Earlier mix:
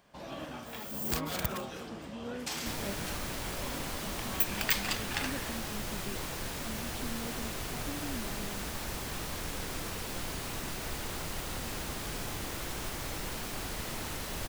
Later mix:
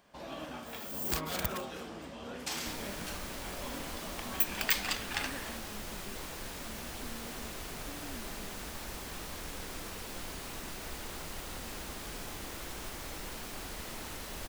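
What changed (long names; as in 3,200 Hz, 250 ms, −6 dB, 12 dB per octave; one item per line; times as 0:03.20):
speech −7.0 dB
second sound −4.0 dB
master: add parametric band 120 Hz −7 dB 0.64 octaves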